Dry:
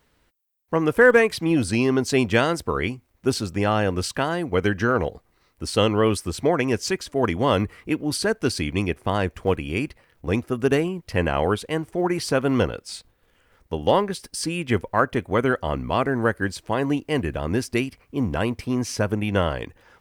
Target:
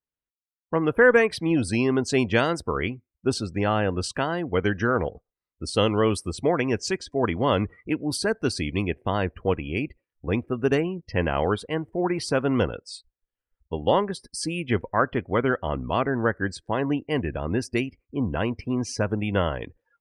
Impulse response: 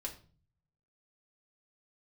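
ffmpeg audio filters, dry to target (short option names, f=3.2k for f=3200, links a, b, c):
-af "afftdn=nr=31:nf=-40,volume=-2dB"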